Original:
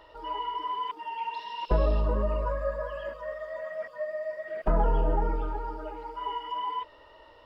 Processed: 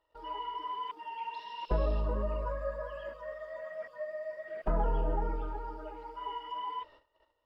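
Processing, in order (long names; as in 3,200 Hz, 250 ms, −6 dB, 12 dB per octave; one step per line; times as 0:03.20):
noise gate −50 dBFS, range −20 dB
level −5.5 dB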